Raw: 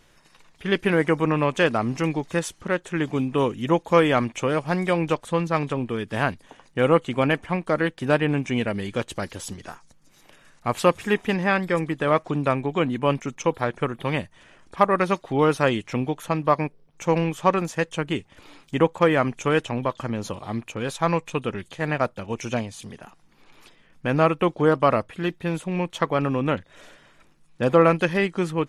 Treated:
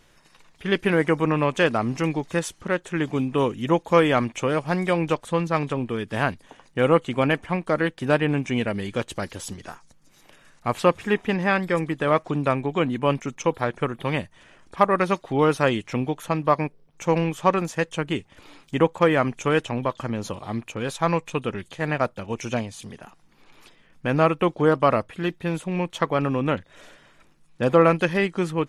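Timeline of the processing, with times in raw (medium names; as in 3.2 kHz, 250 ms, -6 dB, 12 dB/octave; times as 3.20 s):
10.77–11.40 s: treble shelf 5.7 kHz -8 dB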